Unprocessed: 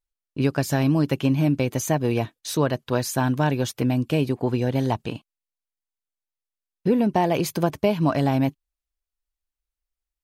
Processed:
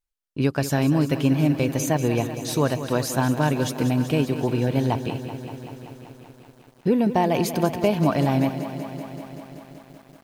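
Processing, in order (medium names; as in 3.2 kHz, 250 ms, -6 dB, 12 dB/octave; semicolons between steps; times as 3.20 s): bit-crushed delay 191 ms, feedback 80%, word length 8-bit, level -11.5 dB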